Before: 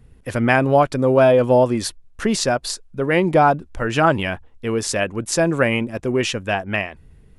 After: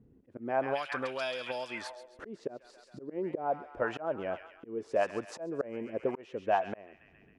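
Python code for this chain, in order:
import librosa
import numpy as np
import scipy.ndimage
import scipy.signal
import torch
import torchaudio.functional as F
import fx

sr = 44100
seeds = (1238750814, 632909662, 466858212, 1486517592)

y = fx.echo_wet_highpass(x, sr, ms=135, feedback_pct=56, hz=1700.0, wet_db=-7.0)
y = fx.auto_swell(y, sr, attack_ms=493.0)
y = fx.auto_wah(y, sr, base_hz=270.0, top_hz=4600.0, q=2.0, full_db=-11.0, direction='up')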